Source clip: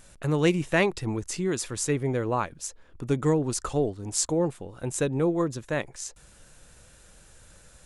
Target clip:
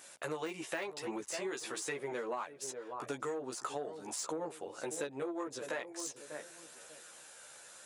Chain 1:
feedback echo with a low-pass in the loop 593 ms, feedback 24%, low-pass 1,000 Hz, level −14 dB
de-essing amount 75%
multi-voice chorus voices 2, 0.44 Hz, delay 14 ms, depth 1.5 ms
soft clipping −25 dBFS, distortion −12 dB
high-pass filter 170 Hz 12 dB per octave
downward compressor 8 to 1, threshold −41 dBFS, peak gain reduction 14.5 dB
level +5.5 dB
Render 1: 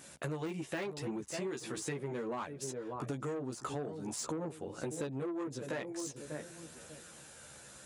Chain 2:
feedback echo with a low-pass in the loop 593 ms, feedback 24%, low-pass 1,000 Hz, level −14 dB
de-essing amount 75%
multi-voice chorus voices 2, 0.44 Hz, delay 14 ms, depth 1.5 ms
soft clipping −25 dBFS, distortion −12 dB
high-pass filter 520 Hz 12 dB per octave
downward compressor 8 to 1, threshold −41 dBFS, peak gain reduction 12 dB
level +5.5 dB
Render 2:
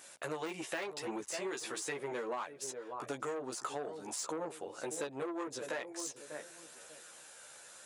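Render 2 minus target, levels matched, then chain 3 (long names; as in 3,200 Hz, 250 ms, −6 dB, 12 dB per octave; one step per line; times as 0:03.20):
soft clipping: distortion +7 dB
feedback echo with a low-pass in the loop 593 ms, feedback 24%, low-pass 1,000 Hz, level −14 dB
de-essing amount 75%
multi-voice chorus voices 2, 0.44 Hz, delay 14 ms, depth 1.5 ms
soft clipping −19 dBFS, distortion −19 dB
high-pass filter 520 Hz 12 dB per octave
downward compressor 8 to 1, threshold −41 dBFS, peak gain reduction 14 dB
level +5.5 dB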